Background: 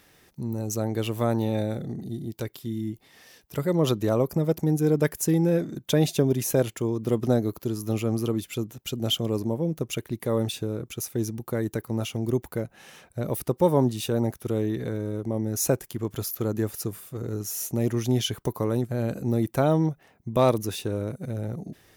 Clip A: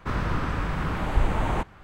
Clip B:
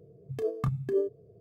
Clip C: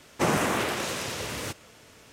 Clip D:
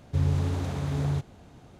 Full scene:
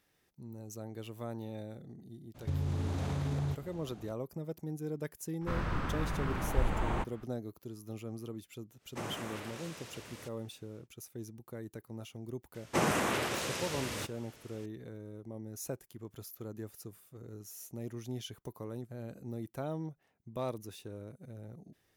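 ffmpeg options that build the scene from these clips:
ffmpeg -i bed.wav -i cue0.wav -i cue1.wav -i cue2.wav -i cue3.wav -filter_complex "[3:a]asplit=2[link_01][link_02];[0:a]volume=-16.5dB[link_03];[4:a]acompressor=threshold=-28dB:ratio=6:attack=3.2:release=140:knee=1:detection=peak[link_04];[link_02]aresample=32000,aresample=44100[link_05];[link_04]atrim=end=1.79,asetpts=PTS-STARTPTS,volume=-1.5dB,afade=type=in:duration=0.02,afade=type=out:start_time=1.77:duration=0.02,adelay=2340[link_06];[1:a]atrim=end=1.83,asetpts=PTS-STARTPTS,volume=-7.5dB,afade=type=in:duration=0.004:curve=hsin,afade=type=out:start_time=1.826:duration=0.004:curve=hsin,adelay=238581S[link_07];[link_01]atrim=end=2.12,asetpts=PTS-STARTPTS,volume=-16.5dB,afade=type=in:duration=0.1,afade=type=out:start_time=2.02:duration=0.1,adelay=8760[link_08];[link_05]atrim=end=2.12,asetpts=PTS-STARTPTS,volume=-5dB,afade=type=in:duration=0.004:curve=hsin,afade=type=out:start_time=2.116:duration=0.004:curve=hsin,adelay=12540[link_09];[link_03][link_06][link_07][link_08][link_09]amix=inputs=5:normalize=0" out.wav

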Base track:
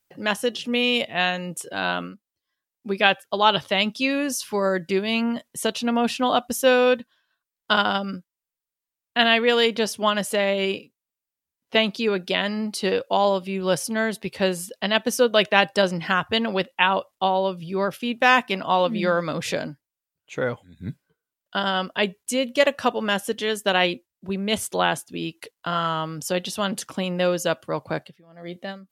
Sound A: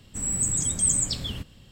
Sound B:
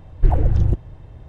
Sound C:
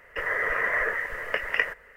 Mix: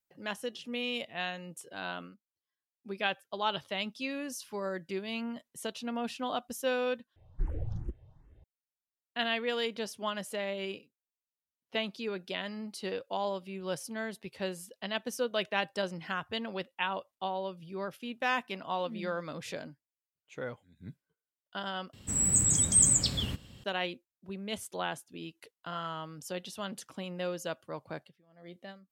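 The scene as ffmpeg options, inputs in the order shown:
ffmpeg -i bed.wav -i cue0.wav -i cue1.wav -filter_complex "[0:a]volume=-13.5dB[link_01];[2:a]asplit=2[link_02][link_03];[link_03]afreqshift=2.5[link_04];[link_02][link_04]amix=inputs=2:normalize=1[link_05];[1:a]highpass=55[link_06];[link_01]asplit=3[link_07][link_08][link_09];[link_07]atrim=end=7.164[link_10];[link_05]atrim=end=1.28,asetpts=PTS-STARTPTS,volume=-16dB[link_11];[link_08]atrim=start=8.436:end=21.934[link_12];[link_06]atrim=end=1.71[link_13];[link_09]atrim=start=23.636[link_14];[link_10][link_11]acrossfade=duration=0.004:curve1=hsin:curve2=hsin[link_15];[link_15][link_12]acrossfade=duration=0.004:curve1=hsin:curve2=hsin[link_16];[link_16][link_13]acrossfade=duration=0.004:curve1=hsin:curve2=hsin[link_17];[link_17][link_14]acrossfade=duration=0.004:curve1=hsin:curve2=hsin" out.wav

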